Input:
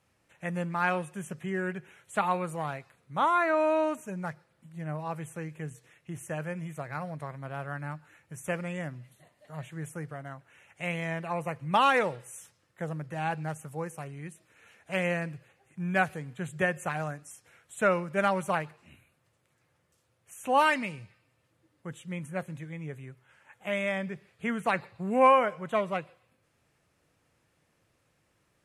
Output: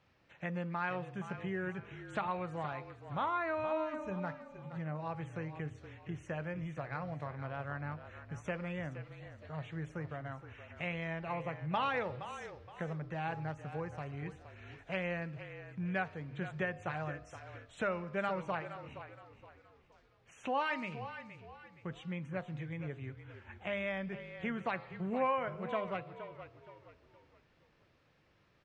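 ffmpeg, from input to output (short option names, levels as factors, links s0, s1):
-filter_complex "[0:a]lowpass=f=4900:w=0.5412,lowpass=f=4900:w=1.3066,bandreject=f=103.2:t=h:w=4,bandreject=f=206.4:t=h:w=4,bandreject=f=309.6:t=h:w=4,bandreject=f=412.8:t=h:w=4,bandreject=f=516:t=h:w=4,bandreject=f=619.2:t=h:w=4,bandreject=f=722.4:t=h:w=4,bandreject=f=825.6:t=h:w=4,bandreject=f=928.8:t=h:w=4,bandreject=f=1032:t=h:w=4,bandreject=f=1135.2:t=h:w=4,bandreject=f=1238.4:t=h:w=4,bandreject=f=1341.6:t=h:w=4,acompressor=threshold=0.00794:ratio=2,asplit=5[s0][s1][s2][s3][s4];[s1]adelay=469,afreqshift=-37,volume=0.266[s5];[s2]adelay=938,afreqshift=-74,volume=0.0955[s6];[s3]adelay=1407,afreqshift=-111,volume=0.0347[s7];[s4]adelay=1876,afreqshift=-148,volume=0.0124[s8];[s0][s5][s6][s7][s8]amix=inputs=5:normalize=0,volume=1.19"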